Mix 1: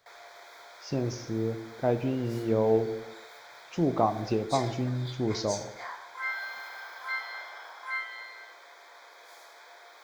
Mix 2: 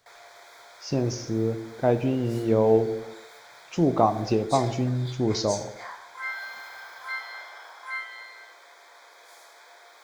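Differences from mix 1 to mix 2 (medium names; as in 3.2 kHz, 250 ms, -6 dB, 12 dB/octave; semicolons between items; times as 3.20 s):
speech +4.5 dB; master: add peaking EQ 8.9 kHz +6 dB 0.84 oct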